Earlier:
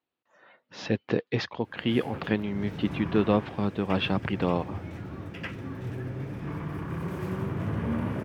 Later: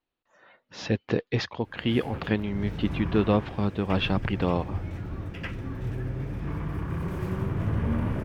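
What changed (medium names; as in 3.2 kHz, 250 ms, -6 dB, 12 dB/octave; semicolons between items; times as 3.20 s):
speech: remove distance through air 53 m; master: remove high-pass 120 Hz 12 dB/octave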